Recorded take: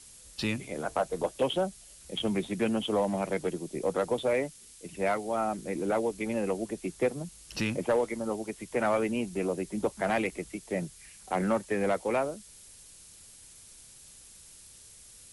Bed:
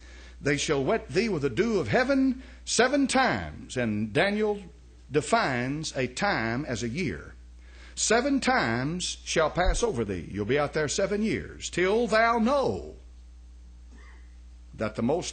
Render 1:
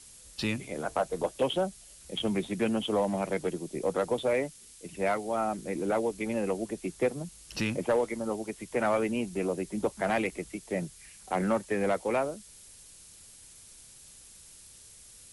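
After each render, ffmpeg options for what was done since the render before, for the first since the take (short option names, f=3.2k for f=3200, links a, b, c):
-af anull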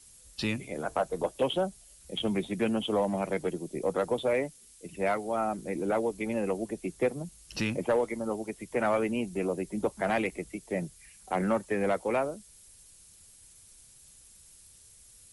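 -af "afftdn=nr=6:nf=-53"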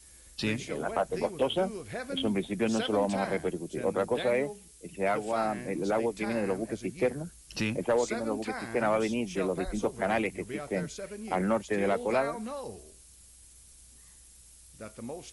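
-filter_complex "[1:a]volume=-14dB[a];[0:a][a]amix=inputs=2:normalize=0"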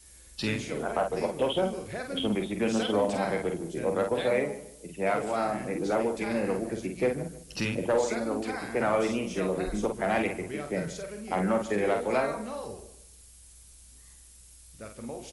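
-filter_complex "[0:a]asplit=2[a][b];[b]adelay=48,volume=-5.5dB[c];[a][c]amix=inputs=2:normalize=0,asplit=2[d][e];[e]adelay=152,lowpass=f=2k:p=1,volume=-14dB,asplit=2[f][g];[g]adelay=152,lowpass=f=2k:p=1,volume=0.31,asplit=2[h][i];[i]adelay=152,lowpass=f=2k:p=1,volume=0.31[j];[d][f][h][j]amix=inputs=4:normalize=0"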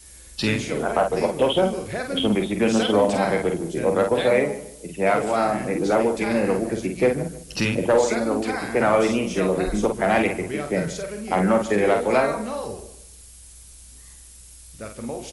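-af "volume=7.5dB"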